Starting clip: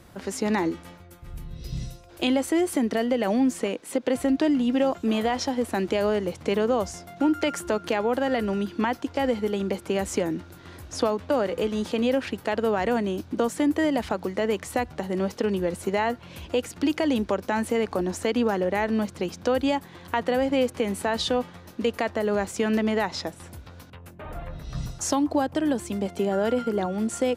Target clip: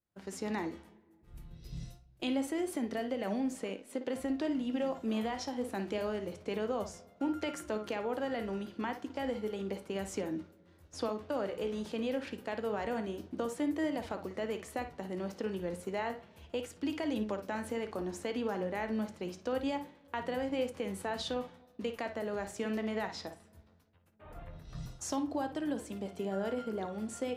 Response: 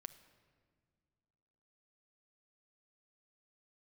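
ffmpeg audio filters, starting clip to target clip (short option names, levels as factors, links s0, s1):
-filter_complex "[0:a]agate=range=0.0224:threshold=0.02:ratio=3:detection=peak,asplit=2[s0][s1];[1:a]atrim=start_sample=2205,lowpass=4100,adelay=56[s2];[s1][s2]afir=irnorm=-1:irlink=0,volume=0.631[s3];[s0][s3]amix=inputs=2:normalize=0,flanger=delay=9.2:depth=9.2:regen=73:speed=0.29:shape=triangular,volume=0.447"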